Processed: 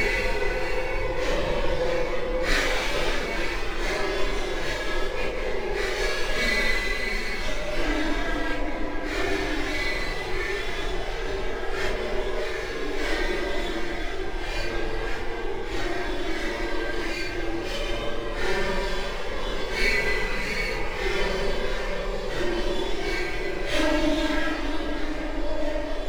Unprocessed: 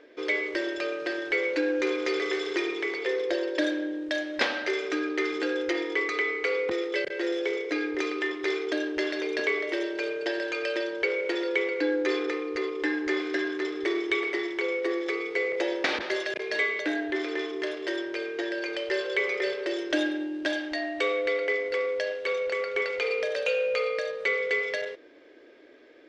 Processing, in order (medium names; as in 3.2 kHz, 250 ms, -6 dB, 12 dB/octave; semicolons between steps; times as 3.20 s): half-wave rectifier; echo whose repeats swap between lows and highs 317 ms, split 900 Hz, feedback 81%, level -5 dB; Paulstretch 5.2×, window 0.05 s, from 15.36 s; trim +4 dB